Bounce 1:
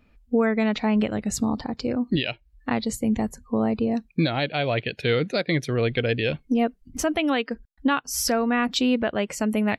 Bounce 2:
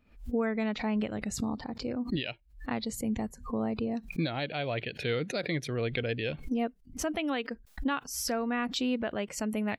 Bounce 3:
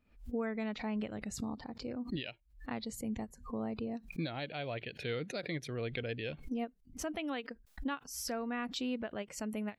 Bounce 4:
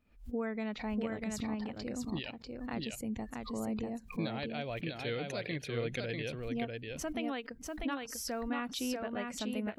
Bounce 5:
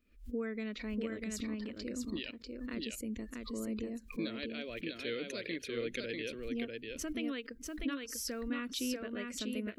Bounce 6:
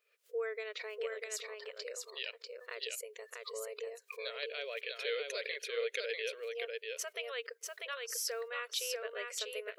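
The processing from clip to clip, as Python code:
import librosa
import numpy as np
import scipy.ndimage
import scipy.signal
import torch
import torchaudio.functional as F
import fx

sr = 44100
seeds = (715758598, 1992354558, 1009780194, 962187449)

y1 = fx.pre_swell(x, sr, db_per_s=140.0)
y1 = y1 * librosa.db_to_amplitude(-8.5)
y2 = fx.end_taper(y1, sr, db_per_s=410.0)
y2 = y2 * librosa.db_to_amplitude(-6.5)
y3 = y2 + 10.0 ** (-3.5 / 20.0) * np.pad(y2, (int(644 * sr / 1000.0), 0))[:len(y2)]
y4 = fx.fixed_phaser(y3, sr, hz=330.0, stages=4)
y4 = y4 * librosa.db_to_amplitude(1.0)
y5 = fx.brickwall_highpass(y4, sr, low_hz=400.0)
y5 = y5 * librosa.db_to_amplitude(3.0)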